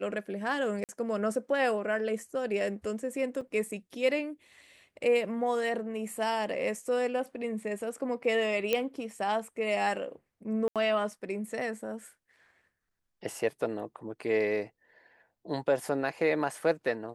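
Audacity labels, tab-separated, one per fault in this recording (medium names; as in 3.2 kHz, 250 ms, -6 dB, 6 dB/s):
0.840000	0.890000	dropout 48 ms
3.410000	3.410000	dropout 4.3 ms
8.730000	8.730000	pop -13 dBFS
10.680000	10.760000	dropout 77 ms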